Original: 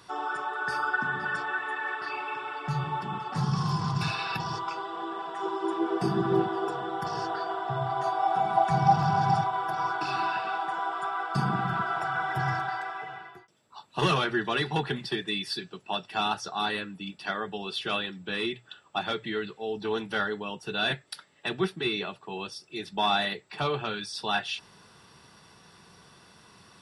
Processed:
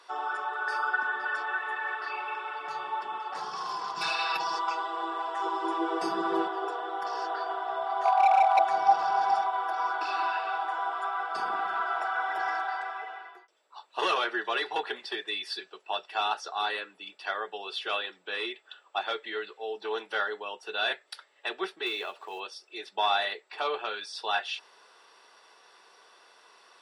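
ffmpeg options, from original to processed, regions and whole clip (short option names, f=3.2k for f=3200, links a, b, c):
-filter_complex "[0:a]asettb=1/sr,asplit=3[a][b][c];[a]atrim=end=3.974[d];[b]atrim=start=3.97:end=6.48,asetpts=PTS-STARTPTS,afade=t=in:d=0.004:c=qsin,afade=t=out:st=2.506:d=0.004:c=qsin,bass=f=250:g=7,treble=f=4k:g=6,aecho=1:1:6.1:0.68,atrim=end_sample=110691[e];[c]atrim=start=6.476[f];[d][e]acrossfade=d=0.004:c1=hsin:c2=qsin[g];[g][f]acrossfade=d=0.004:c1=qsin:c2=hsin,asettb=1/sr,asplit=3[h][i][j];[h]atrim=end=8.054[k];[i]atrim=start=8.05:end=8.59,asetpts=PTS-STARTPTS,afade=t=in:d=0.004:c=qsin,afade=t=out:st=0.536:d=0.004:c=qsin,lowshelf=f=530:t=q:w=3:g=-12,asoftclip=type=hard:threshold=-16.5dB[l];[j]atrim=start=8.586[m];[k][l]acrossfade=d=0.004:c1=hsin:c2=qsin[n];[n][m]acrossfade=d=0.004:c1=qsin:c2=hsin,asettb=1/sr,asplit=3[o][p][q];[o]atrim=end=21.864[r];[p]atrim=start=21.86:end=22.4,asetpts=PTS-STARTPTS,afade=t=in:d=0.004:c=qsin,afade=t=out:st=0.536:d=0.004:c=qsin,acompressor=mode=upward:threshold=-34dB:ratio=2.5:attack=3.2:release=140:knee=2.83:detection=peak,acrusher=bits=5:mode=log:mix=0:aa=0.000001[s];[q]atrim=start=22.396[t];[r][s]acrossfade=d=0.004:c1=hsin:c2=qsin[u];[u][t]acrossfade=d=0.004:c1=qsin:c2=hsin,highpass=f=430:w=0.5412,highpass=f=430:w=1.3066,highshelf=f=7.6k:g=-11"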